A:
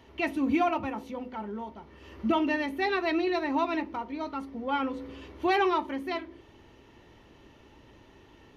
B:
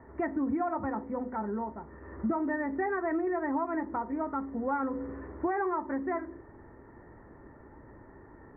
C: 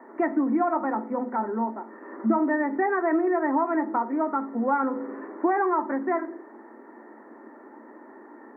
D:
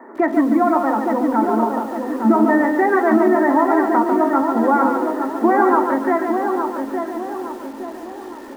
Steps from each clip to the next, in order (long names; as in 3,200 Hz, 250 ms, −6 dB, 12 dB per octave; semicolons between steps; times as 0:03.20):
Butterworth low-pass 1,900 Hz 72 dB per octave; downward compressor 6 to 1, threshold −31 dBFS, peak gain reduction 9.5 dB; level +3.5 dB
Chebyshev high-pass with heavy ripple 220 Hz, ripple 3 dB; on a send at −14.5 dB: convolution reverb, pre-delay 3 ms; on the sum: level +8 dB
feedback echo with a low-pass in the loop 863 ms, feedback 50%, low-pass 1,200 Hz, level −4.5 dB; feedback echo at a low word length 144 ms, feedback 35%, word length 8 bits, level −5.5 dB; level +7 dB